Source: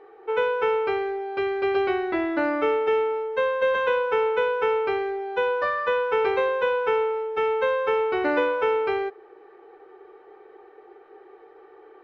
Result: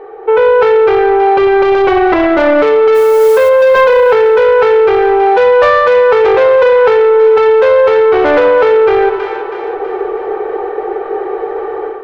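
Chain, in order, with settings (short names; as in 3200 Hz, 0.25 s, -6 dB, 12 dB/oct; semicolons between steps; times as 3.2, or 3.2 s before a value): tilt -3 dB/oct; AGC gain up to 13 dB; soft clip -12.5 dBFS, distortion -12 dB; resonant low shelf 380 Hz -6.5 dB, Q 1.5; 2.94–3.48 added noise white -41 dBFS; split-band echo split 830 Hz, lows 95 ms, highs 0.323 s, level -13.5 dB; maximiser +16.5 dB; gain -1 dB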